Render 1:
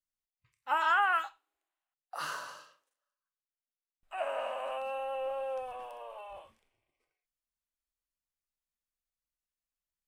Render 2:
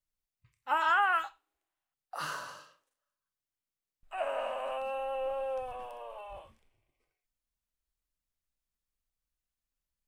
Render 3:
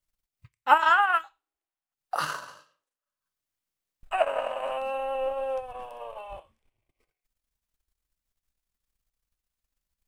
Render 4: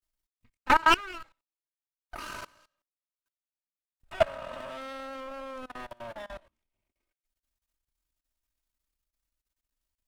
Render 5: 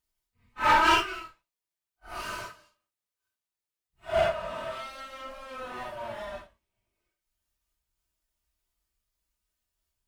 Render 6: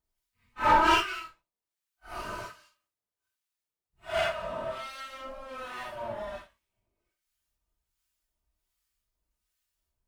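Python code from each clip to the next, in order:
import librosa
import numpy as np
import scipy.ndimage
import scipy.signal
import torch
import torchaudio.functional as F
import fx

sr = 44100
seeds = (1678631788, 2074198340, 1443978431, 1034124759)

y1 = fx.low_shelf(x, sr, hz=190.0, db=11.5)
y2 = fx.transient(y1, sr, attack_db=9, sustain_db=-12)
y2 = F.gain(torch.from_numpy(y2), 4.5).numpy()
y3 = fx.lower_of_two(y2, sr, delay_ms=3.2)
y3 = fx.level_steps(y3, sr, step_db=22)
y3 = F.gain(torch.from_numpy(y3), 4.0).numpy()
y4 = fx.phase_scramble(y3, sr, seeds[0], window_ms=200)
y4 = 10.0 ** (-18.0 / 20.0) * np.tanh(y4 / 10.0 ** (-18.0 / 20.0))
y4 = fx.notch_comb(y4, sr, f0_hz=270.0)
y4 = F.gain(torch.from_numpy(y4), 5.0).numpy()
y5 = fx.harmonic_tremolo(y4, sr, hz=1.3, depth_pct=70, crossover_hz=1100.0)
y5 = F.gain(torch.from_numpy(y5), 3.0).numpy()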